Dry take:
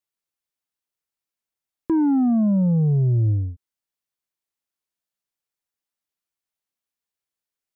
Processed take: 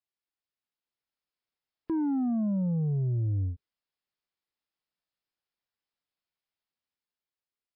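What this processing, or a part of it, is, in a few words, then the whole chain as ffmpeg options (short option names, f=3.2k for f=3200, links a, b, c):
low-bitrate web radio: -af "dynaudnorm=f=110:g=17:m=4.5dB,alimiter=limit=-20dB:level=0:latency=1:release=131,volume=-5dB" -ar 12000 -c:a libmp3lame -b:a 24k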